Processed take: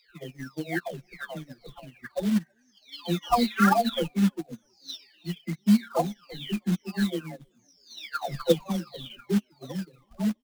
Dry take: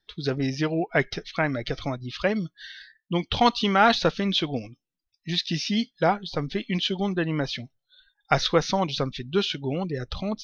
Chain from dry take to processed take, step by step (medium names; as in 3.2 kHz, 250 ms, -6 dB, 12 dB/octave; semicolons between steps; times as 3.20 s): delay that grows with frequency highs early, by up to 978 ms; de-hum 75.23 Hz, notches 12; reverb removal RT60 1.5 s; dynamic bell 210 Hz, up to +8 dB, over -45 dBFS, Q 5.2; in parallel at +2 dB: peak limiter -23 dBFS, peak gain reduction 13 dB; on the sum: short-mantissa float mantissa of 2-bit; on a send: frequency-shifting echo 324 ms, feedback 54%, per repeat +36 Hz, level -21.5 dB; on the sum: upward expansion 2.5:1, over -32 dBFS